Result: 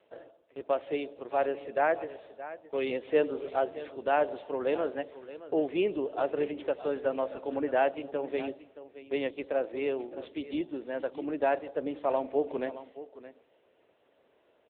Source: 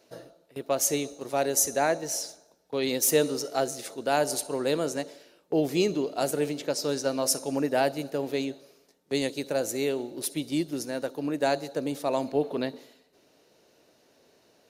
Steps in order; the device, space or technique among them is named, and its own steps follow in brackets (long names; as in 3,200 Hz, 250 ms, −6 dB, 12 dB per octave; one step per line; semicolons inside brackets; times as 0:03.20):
dynamic equaliser 8,200 Hz, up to −4 dB, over −47 dBFS, Q 3.6
satellite phone (band-pass filter 350–3,300 Hz; single-tap delay 620 ms −14.5 dB; AMR narrowband 6.7 kbit/s 8,000 Hz)